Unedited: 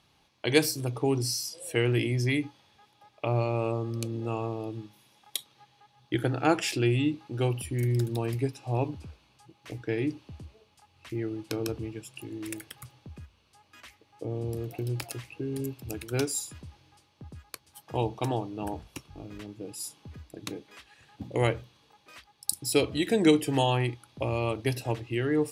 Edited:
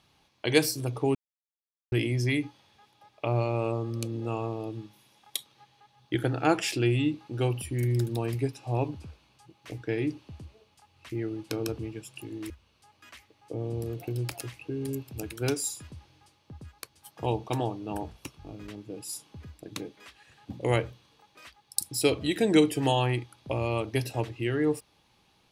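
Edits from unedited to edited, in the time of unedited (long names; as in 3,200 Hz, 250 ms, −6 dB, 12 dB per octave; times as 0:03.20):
0:01.15–0:01.92: silence
0:12.50–0:13.21: remove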